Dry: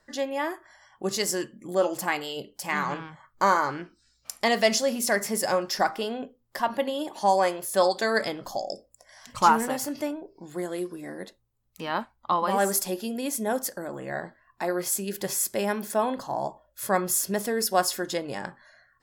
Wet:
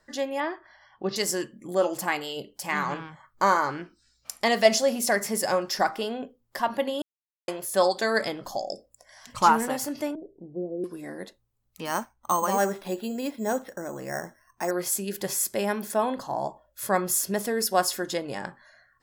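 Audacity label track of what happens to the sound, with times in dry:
0.400000	1.160000	Butterworth low-pass 5,100 Hz 48 dB per octave
4.650000	5.110000	parametric band 690 Hz +6.5 dB 0.52 octaves
7.020000	7.480000	silence
10.150000	10.840000	Butterworth low-pass 600 Hz
11.850000	14.710000	bad sample-rate conversion rate divided by 6×, down filtered, up hold

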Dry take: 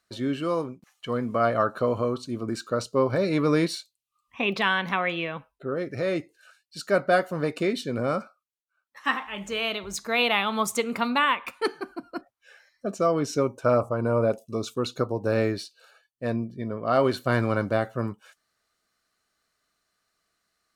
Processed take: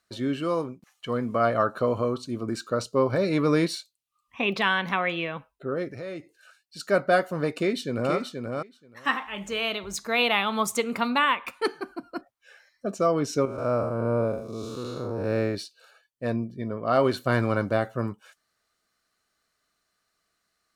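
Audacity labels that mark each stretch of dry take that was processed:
5.910000	6.800000	downward compressor 2 to 1, threshold −40 dBFS
7.510000	8.140000	delay throw 480 ms, feedback 10%, level −5 dB
13.450000	15.550000	spectrum smeared in time width 194 ms

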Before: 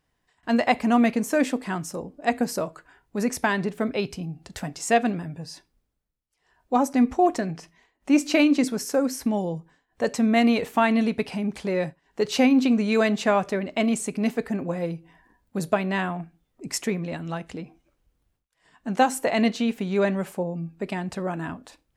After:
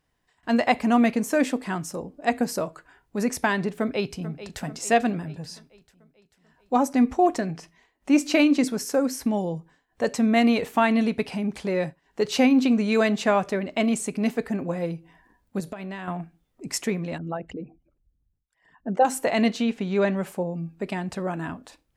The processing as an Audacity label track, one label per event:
3.780000	4.620000	delay throw 440 ms, feedback 55%, level −13.5 dB
15.600000	16.080000	downward compressor 10 to 1, threshold −31 dBFS
17.180000	19.050000	spectral envelope exaggerated exponent 2
19.630000	20.230000	low-pass filter 6,800 Hz

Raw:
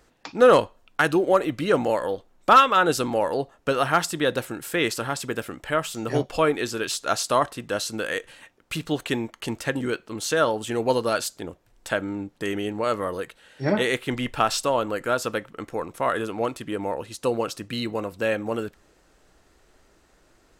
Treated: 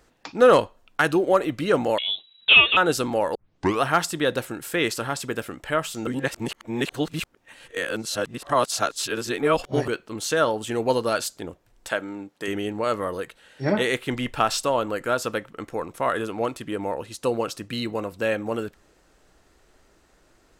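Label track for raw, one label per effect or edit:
1.980000	2.770000	voice inversion scrambler carrier 3,900 Hz
3.350000	3.350000	tape start 0.47 s
6.070000	9.880000	reverse
11.880000	12.480000	high-pass filter 370 Hz 6 dB per octave

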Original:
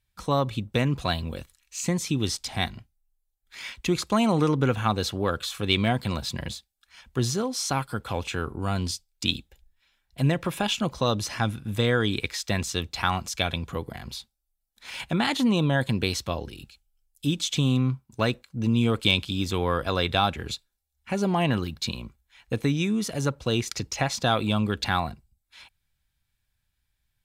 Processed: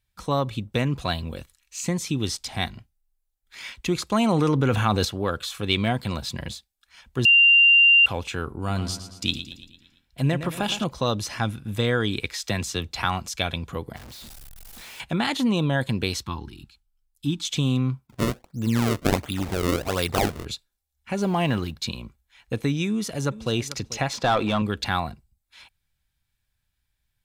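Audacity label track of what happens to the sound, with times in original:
4.150000	5.050000	envelope flattener amount 70%
7.250000	8.060000	beep over 2,780 Hz −11.5 dBFS
8.570000	10.840000	repeating echo 113 ms, feedback 53%, level −11 dB
12.420000	13.050000	multiband upward and downward compressor depth 40%
13.960000	15.000000	sign of each sample alone
16.230000	17.450000	drawn EQ curve 350 Hz 0 dB, 610 Hz −26 dB, 870 Hz +3 dB, 2,700 Hz −5 dB, 4,100 Hz −2 dB, 6,100 Hz −6 dB
18.070000	20.450000	sample-and-hold swept by an LFO 31×, swing 160% 1.4 Hz
21.180000	21.720000	mu-law and A-law mismatch coded by mu
22.870000	23.530000	delay throw 440 ms, feedback 10%, level −16 dB
24.130000	24.620000	mid-hump overdrive drive 18 dB, tone 1,200 Hz, clips at −9.5 dBFS

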